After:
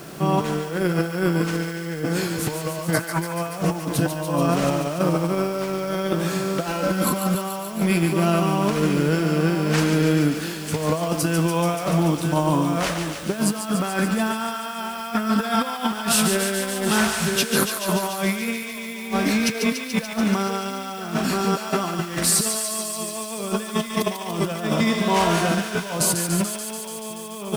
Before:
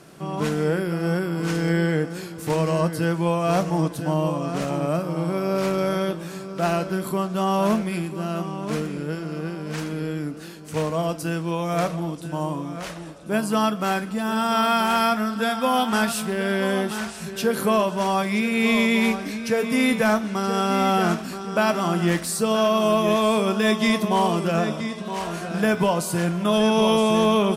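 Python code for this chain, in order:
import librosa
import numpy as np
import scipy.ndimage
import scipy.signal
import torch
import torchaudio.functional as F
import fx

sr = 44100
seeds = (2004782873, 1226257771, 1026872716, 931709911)

y = fx.spec_box(x, sr, start_s=2.94, length_s=0.25, low_hz=560.0, high_hz=2500.0, gain_db=12)
y = fx.comb(y, sr, ms=3.8, depth=0.77, at=(6.66, 7.35))
y = fx.over_compress(y, sr, threshold_db=-27.0, ratio=-0.5)
y = fx.dmg_noise_colour(y, sr, seeds[0], colour='blue', level_db=-56.0)
y = fx.echo_thinned(y, sr, ms=144, feedback_pct=81, hz=1200.0, wet_db=-6.0)
y = F.gain(torch.from_numpy(y), 4.5).numpy()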